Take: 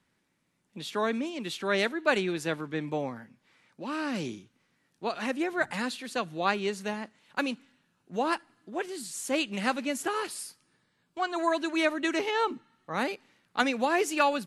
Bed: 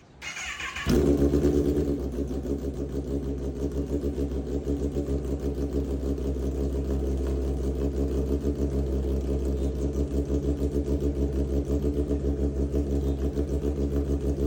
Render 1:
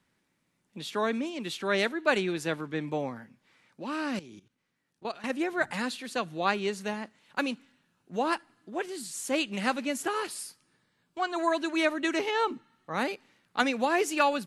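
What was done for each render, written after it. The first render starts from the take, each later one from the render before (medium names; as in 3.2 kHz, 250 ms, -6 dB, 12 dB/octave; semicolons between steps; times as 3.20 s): 4.19–5.30 s: level held to a coarse grid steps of 16 dB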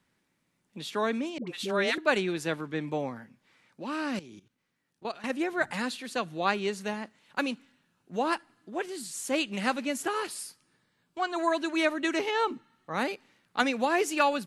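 1.38–1.98 s: phase dispersion highs, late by 92 ms, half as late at 640 Hz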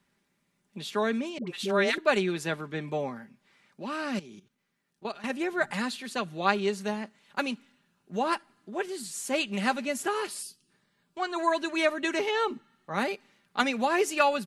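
comb 5 ms, depth 42%; 10.42–10.70 s: time-frequency box 440–2500 Hz -14 dB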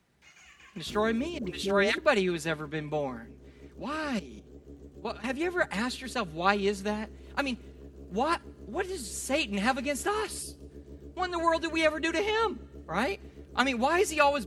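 add bed -20.5 dB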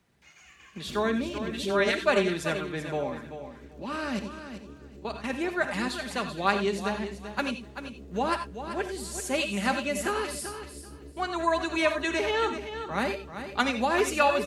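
feedback delay 386 ms, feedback 19%, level -10 dB; gated-style reverb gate 110 ms rising, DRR 8.5 dB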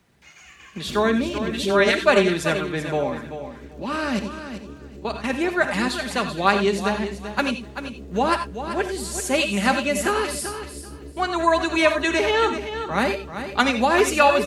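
trim +7 dB; peak limiter -2 dBFS, peak gain reduction 1.5 dB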